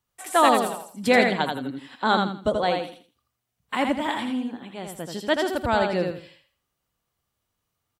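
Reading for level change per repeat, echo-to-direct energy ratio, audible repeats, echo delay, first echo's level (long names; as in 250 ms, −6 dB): −11.0 dB, −4.0 dB, 3, 82 ms, −4.5 dB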